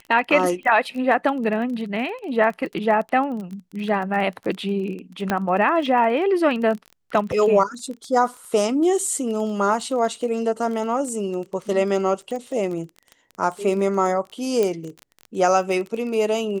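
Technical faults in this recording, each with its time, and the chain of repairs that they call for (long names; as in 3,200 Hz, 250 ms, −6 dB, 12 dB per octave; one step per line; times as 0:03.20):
surface crackle 20 per second −29 dBFS
0:05.30: click −8 dBFS
0:14.63: click −10 dBFS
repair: click removal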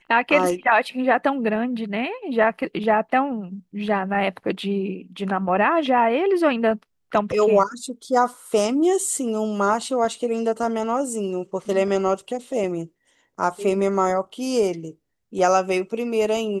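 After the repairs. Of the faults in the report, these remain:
0:05.30: click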